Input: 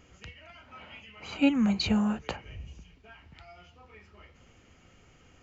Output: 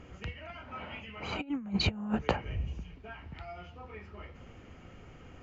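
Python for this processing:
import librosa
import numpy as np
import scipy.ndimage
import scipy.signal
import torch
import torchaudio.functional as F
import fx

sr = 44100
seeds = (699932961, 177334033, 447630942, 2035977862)

y = fx.lowpass(x, sr, hz=1500.0, slope=6)
y = fx.over_compress(y, sr, threshold_db=-32.0, ratio=-0.5)
y = F.gain(torch.from_numpy(y), 2.0).numpy()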